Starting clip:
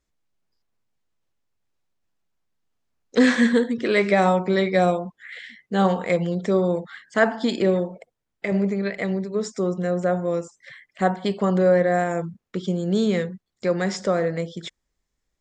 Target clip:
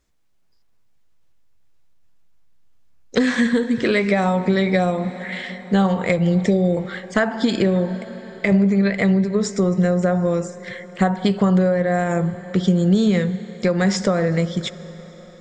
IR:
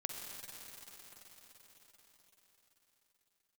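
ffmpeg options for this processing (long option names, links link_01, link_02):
-filter_complex "[0:a]asettb=1/sr,asplit=3[link_01][link_02][link_03];[link_01]atrim=end=6.184[link_04];[link_02]atrim=start=6.18:end=6.77,asetpts=PTS-STARTPTS,afade=type=in:duration=0.004:curve=qsin,afade=type=out:start_time=0.586:duration=0.004:curve=qsin,asuperstop=centerf=1200:order=20:qfactor=1.3[link_05];[link_03]atrim=start=6.766[link_06];[link_04][link_05]acrossfade=duration=0.004:curve1=hsin:curve2=qsin[link_07];[link_07][link_06]acrossfade=duration=0.004:curve1=qsin:curve2=hsin,asplit=2[link_08][link_09];[1:a]atrim=start_sample=2205,adelay=15[link_10];[link_09][link_10]afir=irnorm=-1:irlink=0,volume=-15.5dB[link_11];[link_08][link_11]amix=inputs=2:normalize=0,acompressor=threshold=-22dB:ratio=12,asubboost=boost=2.5:cutoff=190,volume=8dB"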